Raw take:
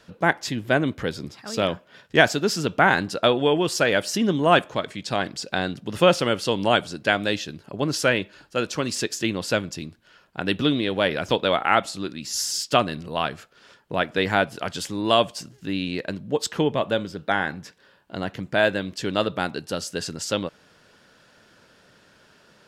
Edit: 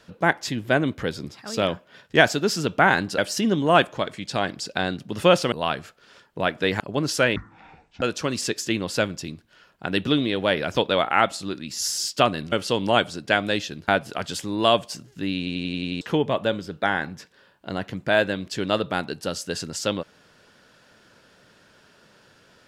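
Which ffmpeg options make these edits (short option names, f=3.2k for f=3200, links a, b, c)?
-filter_complex "[0:a]asplit=15[a][b][c][d][e][f][g][h][i][j][k][l][m][n][o];[a]atrim=end=3.182[p];[b]atrim=start=3.948:end=6.292[q];[c]atrim=start=13.058:end=14.342[r];[d]atrim=start=7.648:end=8.214[s];[e]atrim=start=8.21:end=8.56,asetpts=PTS-STARTPTS,asetrate=23373,aresample=44100[t];[f]atrim=start=8.556:end=13.062[u];[g]atrim=start=6.288:end=7.652[v];[h]atrim=start=14.338:end=15.932[w];[i]atrim=start=15.838:end=15.932[x];[j]atrim=start=15.838:end=15.932[y];[k]atrim=start=15.838:end=15.932[z];[l]atrim=start=15.838:end=15.932[aa];[m]atrim=start=15.838:end=15.932[ab];[n]atrim=start=15.838:end=15.932[ac];[o]atrim=start=16.468[ad];[p][q]acrossfade=d=0.004:c1=hsin:c2=hsin[ae];[ae][r]acrossfade=d=0.004:c1=hsin:c2=hsin[af];[af][s]acrossfade=d=0.004:c1=hsin:c2=hsin[ag];[ag][t]acrossfade=d=0.004:c1=hsin:c2=hsin[ah];[ah][u]acrossfade=d=0.004:c1=hsin:c2=hsin[ai];[ai][v]acrossfade=d=0.004:c1=hsin:c2=hsin[aj];[aj][w]acrossfade=d=0.004:c1=hsin:c2=hsin[ak];[ak][x]acrossfade=d=0.004:c1=hsin:c2=hsin[al];[al][y]acrossfade=d=0.004:c1=hsin:c2=hsin[am];[am][z]acrossfade=d=0.004:c1=hsin:c2=hsin[an];[an][aa]acrossfade=d=0.004:c1=hsin:c2=hsin[ao];[ao][ab]acrossfade=d=0.004:c1=hsin:c2=hsin[ap];[ap][ac]acrossfade=d=0.004:c1=hsin:c2=hsin[aq];[aq][ad]acrossfade=d=0.004:c1=hsin:c2=hsin"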